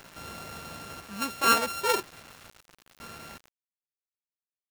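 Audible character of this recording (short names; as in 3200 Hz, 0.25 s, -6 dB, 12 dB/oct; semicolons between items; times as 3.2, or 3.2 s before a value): a buzz of ramps at a fixed pitch in blocks of 32 samples; random-step tremolo 2 Hz, depth 80%; a quantiser's noise floor 8-bit, dither none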